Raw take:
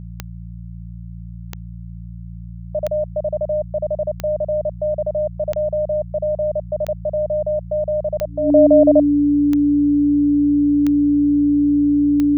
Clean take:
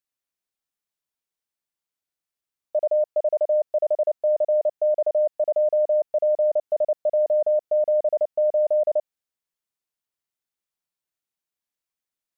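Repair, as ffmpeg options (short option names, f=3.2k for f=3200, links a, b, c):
-af "adeclick=t=4,bandreject=f=57.4:t=h:w=4,bandreject=f=114.8:t=h:w=4,bandreject=f=172.2:t=h:w=4,bandreject=f=290:w=30,asetnsamples=n=441:p=0,asendcmd='8.5 volume volume -9dB',volume=0dB"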